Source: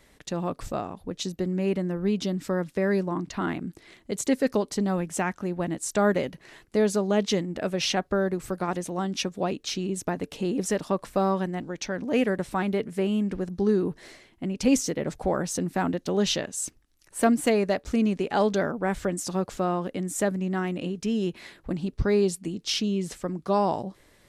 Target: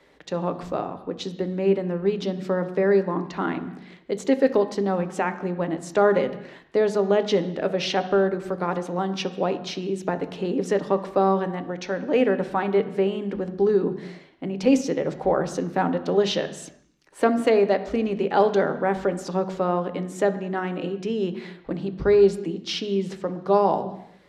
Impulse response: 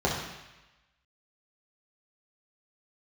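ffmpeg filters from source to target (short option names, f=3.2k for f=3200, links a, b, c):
-filter_complex "[0:a]acrossover=split=210 4600:gain=0.178 1 0.141[a][b][c];[a][b][c]amix=inputs=3:normalize=0,asplit=2[d][e];[1:a]atrim=start_sample=2205,afade=t=out:st=0.42:d=0.01,atrim=end_sample=18963,lowshelf=f=130:g=9.5[f];[e][f]afir=irnorm=-1:irlink=0,volume=-20.5dB[g];[d][g]amix=inputs=2:normalize=0,volume=2dB"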